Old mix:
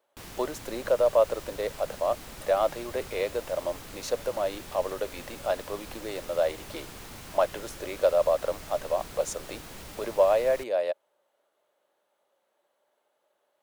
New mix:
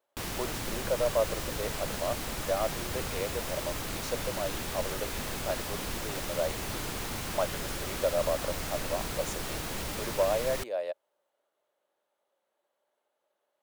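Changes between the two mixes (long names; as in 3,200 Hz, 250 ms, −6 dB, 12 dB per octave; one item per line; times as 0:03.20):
speech −6.0 dB
background +8.0 dB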